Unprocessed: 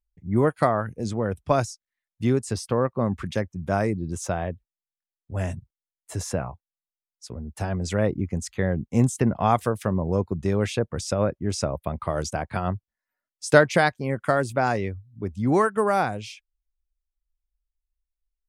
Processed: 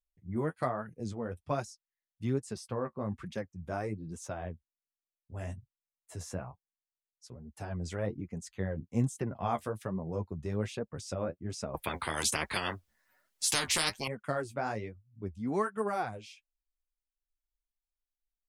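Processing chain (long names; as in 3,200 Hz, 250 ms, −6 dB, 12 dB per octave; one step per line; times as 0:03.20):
flanger 1.2 Hz, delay 4.1 ms, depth 9.6 ms, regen +23%
0:11.74–0:14.08: every bin compressed towards the loudest bin 10 to 1
level −8 dB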